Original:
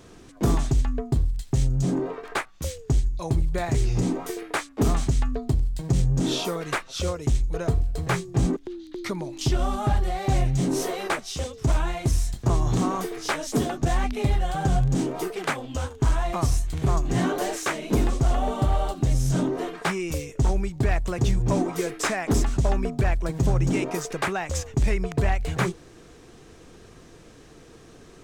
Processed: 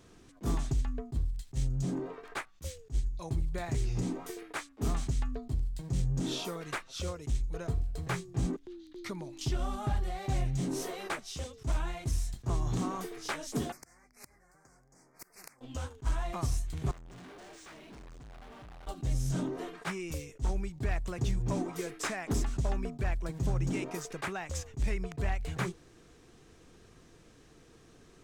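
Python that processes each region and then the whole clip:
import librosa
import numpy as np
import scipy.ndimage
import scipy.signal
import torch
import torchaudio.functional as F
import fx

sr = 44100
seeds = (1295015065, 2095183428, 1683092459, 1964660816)

y = fx.chain(x, sr, fx.cheby1_bandstop(low_hz=2100.0, high_hz=4900.0, order=3),
    fx.gate_flip(shuts_db=-20.0, range_db=-30),
    fx.spectral_comp(ratio=4.0), at=(13.72, 15.61))
y = fx.chain(y, sr, fx.lowpass(hz=9400.0, slope=12),
    fx.tube_stage(drive_db=39.0, bias=0.6),
    fx.resample_linear(factor=3), at=(16.91, 18.87))
y = fx.peak_eq(y, sr, hz=560.0, db=-2.5, octaves=1.6)
y = fx.attack_slew(y, sr, db_per_s=440.0)
y = y * 10.0 ** (-8.5 / 20.0)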